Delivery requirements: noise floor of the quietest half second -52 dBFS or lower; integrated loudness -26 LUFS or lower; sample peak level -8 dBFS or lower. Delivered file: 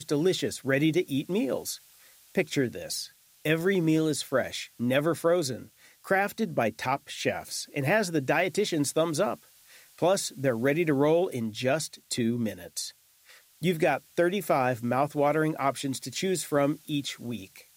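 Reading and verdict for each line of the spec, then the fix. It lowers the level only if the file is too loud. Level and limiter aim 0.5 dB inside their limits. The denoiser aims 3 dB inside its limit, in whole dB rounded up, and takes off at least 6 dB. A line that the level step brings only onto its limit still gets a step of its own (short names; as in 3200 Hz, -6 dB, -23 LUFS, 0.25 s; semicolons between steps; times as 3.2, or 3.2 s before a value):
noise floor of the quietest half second -57 dBFS: OK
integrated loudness -28.0 LUFS: OK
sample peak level -12.0 dBFS: OK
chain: none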